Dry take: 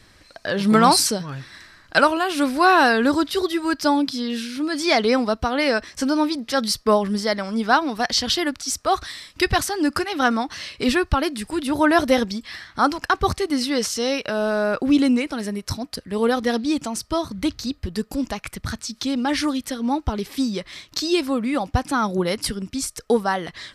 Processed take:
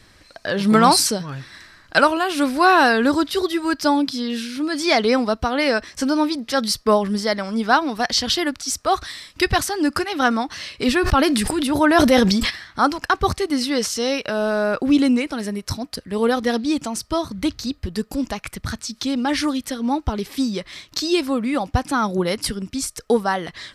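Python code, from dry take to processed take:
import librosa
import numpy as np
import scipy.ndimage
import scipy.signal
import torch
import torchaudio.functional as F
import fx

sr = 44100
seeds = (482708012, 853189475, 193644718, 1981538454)

y = fx.sustainer(x, sr, db_per_s=24.0, at=(11.01, 12.49), fade=0.02)
y = y * 10.0 ** (1.0 / 20.0)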